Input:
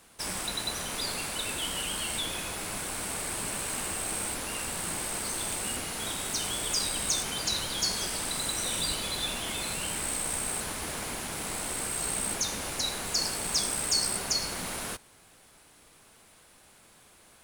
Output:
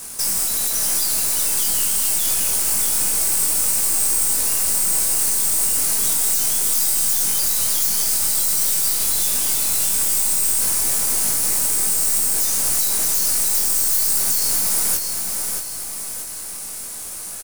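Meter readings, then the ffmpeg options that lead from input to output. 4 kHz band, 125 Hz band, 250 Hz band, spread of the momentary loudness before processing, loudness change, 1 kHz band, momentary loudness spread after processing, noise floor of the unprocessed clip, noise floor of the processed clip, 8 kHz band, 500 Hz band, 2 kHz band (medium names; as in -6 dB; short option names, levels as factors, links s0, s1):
+4.5 dB, +2.0 dB, +1.5 dB, 6 LU, +14.0 dB, +2.5 dB, 6 LU, -58 dBFS, -31 dBFS, +14.0 dB, +2.0 dB, +2.5 dB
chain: -filter_complex "[0:a]aeval=exprs='0.211*sin(PI/2*7.08*val(0)/0.211)':c=same,aeval=exprs='(tanh(17.8*val(0)+0.75)-tanh(0.75))/17.8':c=same,aexciter=amount=5.1:drive=3:freq=4800,alimiter=limit=0.422:level=0:latency=1:release=196,asplit=2[s0][s1];[s1]adelay=21,volume=0.531[s2];[s0][s2]amix=inputs=2:normalize=0,asplit=2[s3][s4];[s4]aecho=0:1:627|1254|1881|2508|3135:0.562|0.242|0.104|0.0447|0.0192[s5];[s3][s5]amix=inputs=2:normalize=0,volume=0.631"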